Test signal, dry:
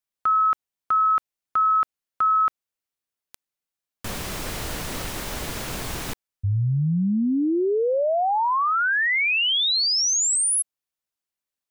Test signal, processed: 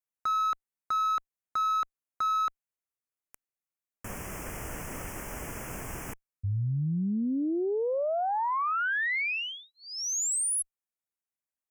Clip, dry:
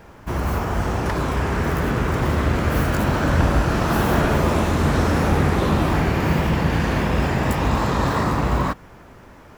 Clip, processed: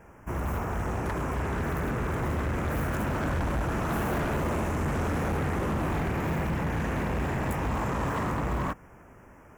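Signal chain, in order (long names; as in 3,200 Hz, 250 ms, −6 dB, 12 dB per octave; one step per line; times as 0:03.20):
Butterworth band-reject 4,000 Hz, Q 1.2
harmonic generator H 6 −29 dB, 8 −42 dB, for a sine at −5.5 dBFS
hard clipping −18 dBFS
level −7 dB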